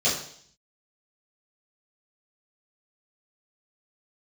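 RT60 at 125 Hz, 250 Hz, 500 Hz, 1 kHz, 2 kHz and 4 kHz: 0.80 s, 0.65 s, 0.60 s, 0.60 s, 0.60 s, 0.70 s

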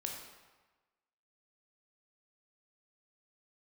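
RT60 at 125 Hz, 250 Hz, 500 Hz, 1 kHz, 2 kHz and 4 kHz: 1.2 s, 1.1 s, 1.2 s, 1.3 s, 1.2 s, 0.95 s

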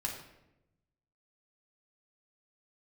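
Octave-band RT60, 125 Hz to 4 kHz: 1.5 s, 1.2 s, 1.0 s, 0.80 s, 0.75 s, 0.60 s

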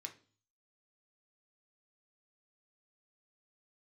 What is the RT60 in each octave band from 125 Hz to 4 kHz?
0.70 s, 0.55 s, 0.40 s, 0.40 s, 0.35 s, 0.45 s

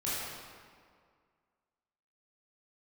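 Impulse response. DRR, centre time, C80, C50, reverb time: -10.0 dB, 135 ms, -1.0 dB, -3.5 dB, 2.0 s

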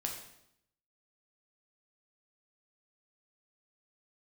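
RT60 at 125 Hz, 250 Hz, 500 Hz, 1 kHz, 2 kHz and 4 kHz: 0.90 s, 0.90 s, 0.80 s, 0.75 s, 0.70 s, 0.70 s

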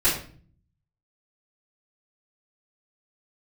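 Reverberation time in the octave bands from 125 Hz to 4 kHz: 1.0 s, 0.80 s, 0.50 s, 0.40 s, 0.40 s, 0.35 s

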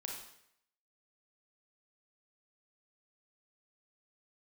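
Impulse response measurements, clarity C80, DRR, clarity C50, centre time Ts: 6.0 dB, -0.5 dB, 2.5 dB, 44 ms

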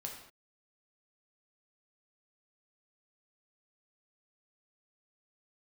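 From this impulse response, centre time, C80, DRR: 32 ms, 7.5 dB, 0.0 dB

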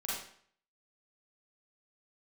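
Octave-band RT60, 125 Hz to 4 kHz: 0.60 s, 0.55 s, 0.55 s, 0.55 s, 0.55 s, 0.50 s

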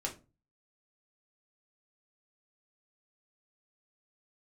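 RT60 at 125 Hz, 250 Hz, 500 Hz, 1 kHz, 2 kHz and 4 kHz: 0.50 s, 0.40 s, 0.35 s, 0.25 s, 0.25 s, 0.20 s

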